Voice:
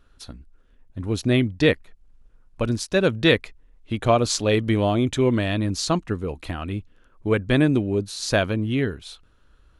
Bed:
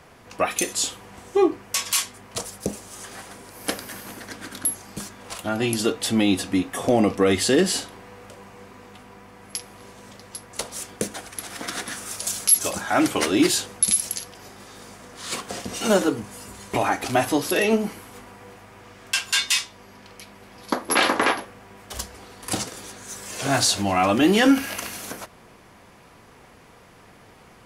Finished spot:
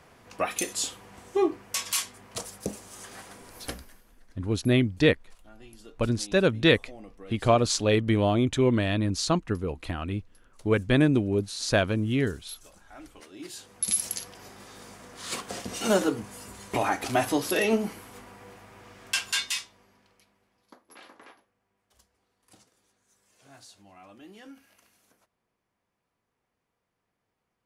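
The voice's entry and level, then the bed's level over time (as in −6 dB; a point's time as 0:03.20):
3.40 s, −2.5 dB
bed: 0:03.58 −5.5 dB
0:04.10 −27.5 dB
0:13.32 −27.5 dB
0:13.98 −4 dB
0:19.23 −4 dB
0:20.86 −31.5 dB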